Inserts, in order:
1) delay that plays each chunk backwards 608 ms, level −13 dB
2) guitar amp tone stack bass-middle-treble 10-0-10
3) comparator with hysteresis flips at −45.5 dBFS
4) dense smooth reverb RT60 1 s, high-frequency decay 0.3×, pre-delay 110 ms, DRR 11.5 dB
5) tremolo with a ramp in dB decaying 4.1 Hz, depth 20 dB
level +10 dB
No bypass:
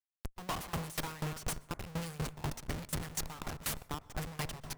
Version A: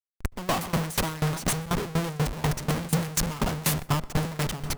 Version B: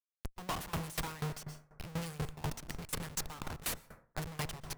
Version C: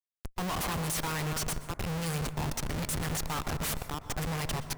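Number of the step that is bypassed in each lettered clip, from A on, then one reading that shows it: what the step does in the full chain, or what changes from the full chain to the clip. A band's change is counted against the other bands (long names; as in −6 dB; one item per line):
2, 250 Hz band +3.0 dB
1, change in momentary loudness spread +4 LU
5, change in crest factor −5.5 dB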